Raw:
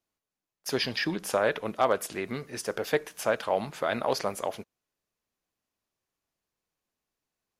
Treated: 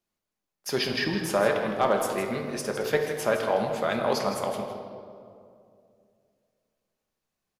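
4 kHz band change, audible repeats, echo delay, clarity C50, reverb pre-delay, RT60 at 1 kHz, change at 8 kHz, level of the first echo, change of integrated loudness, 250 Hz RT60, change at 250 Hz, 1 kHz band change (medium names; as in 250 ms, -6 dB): +1.5 dB, 1, 161 ms, 4.5 dB, 5 ms, 2.1 s, +1.5 dB, -10.0 dB, +2.5 dB, 2.9 s, +4.0 dB, +2.5 dB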